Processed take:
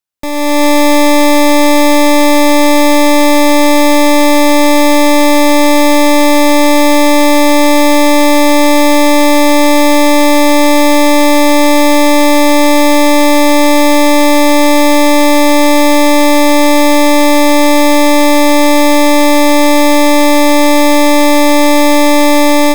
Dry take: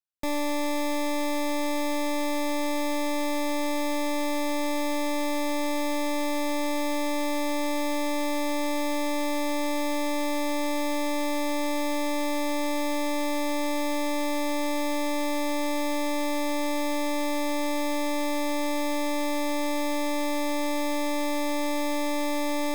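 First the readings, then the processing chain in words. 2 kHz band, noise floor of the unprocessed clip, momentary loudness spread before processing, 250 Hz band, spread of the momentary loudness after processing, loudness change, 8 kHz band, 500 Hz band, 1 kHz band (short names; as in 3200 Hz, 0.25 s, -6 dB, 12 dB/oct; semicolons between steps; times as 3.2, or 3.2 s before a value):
+20.5 dB, -26 dBFS, 0 LU, +20.5 dB, 0 LU, +20.5 dB, +20.5 dB, +20.5 dB, +20.5 dB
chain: AGC gain up to 12 dB; gain +8.5 dB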